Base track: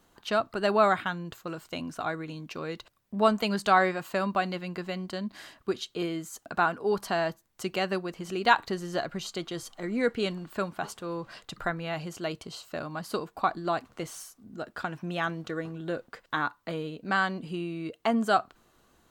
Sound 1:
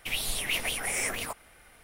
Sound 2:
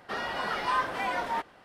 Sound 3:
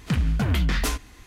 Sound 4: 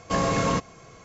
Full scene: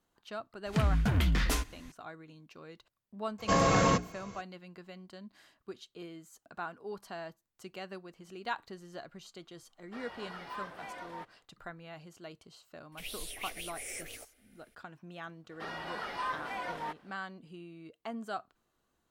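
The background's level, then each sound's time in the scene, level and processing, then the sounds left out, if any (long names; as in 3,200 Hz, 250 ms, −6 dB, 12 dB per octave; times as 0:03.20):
base track −14.5 dB
0:00.66: mix in 3 −5 dB
0:03.38: mix in 4 −1.5 dB, fades 0.02 s + mains-hum notches 60/120/180/240/300/360/420 Hz
0:09.83: mix in 2 −14.5 dB, fades 0.10 s
0:12.92: mix in 1 −10.5 dB + phaser with its sweep stopped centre 420 Hz, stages 4
0:15.51: mix in 2 −8 dB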